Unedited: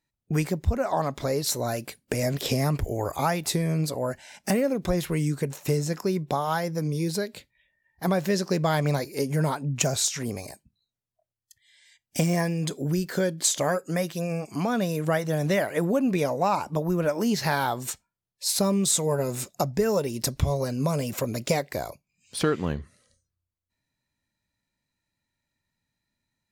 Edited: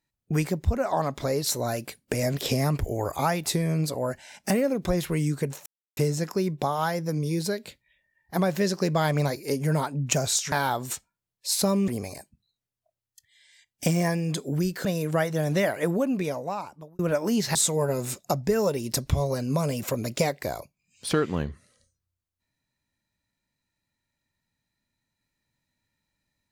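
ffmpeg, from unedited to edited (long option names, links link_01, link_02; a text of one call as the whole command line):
ffmpeg -i in.wav -filter_complex "[0:a]asplit=7[link_01][link_02][link_03][link_04][link_05][link_06][link_07];[link_01]atrim=end=5.66,asetpts=PTS-STARTPTS,afade=type=out:start_time=5.656:duration=0.004:curve=hsin,apad=pad_dur=0.31[link_08];[link_02]atrim=start=5.66:end=10.212,asetpts=PTS-STARTPTS,afade=type=in:duration=0.004:curve=hsin[link_09];[link_03]atrim=start=17.488:end=18.852[link_10];[link_04]atrim=start=10.208:end=13.182[link_11];[link_05]atrim=start=14.788:end=16.93,asetpts=PTS-STARTPTS,afade=type=out:start_time=0.992:duration=1.15[link_12];[link_06]atrim=start=16.93:end=17.492,asetpts=PTS-STARTPTS,afade=type=in:duration=0.004:curve=hsin[link_13];[link_07]atrim=start=18.848[link_14];[link_08][link_09]concat=n=2:v=0:a=1[link_15];[link_15][link_10]acrossfade=duration=0.004:curve1=hsin:curve2=hsin[link_16];[link_16][link_11]acrossfade=duration=0.004:curve1=hsin:curve2=hsin[link_17];[link_12][link_13]concat=n=2:v=0:a=1[link_18];[link_17][link_18]acrossfade=duration=0.004:curve1=hsin:curve2=hsin[link_19];[link_19][link_14]acrossfade=duration=0.004:curve1=hsin:curve2=hsin" out.wav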